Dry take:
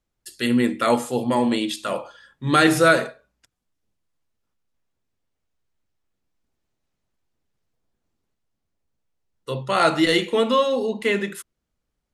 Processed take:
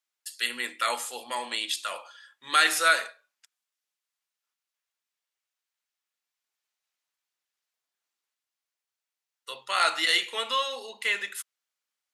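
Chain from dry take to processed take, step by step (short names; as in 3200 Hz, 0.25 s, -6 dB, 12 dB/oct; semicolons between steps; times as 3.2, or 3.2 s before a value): Bessel high-pass 1700 Hz, order 2; gain +1 dB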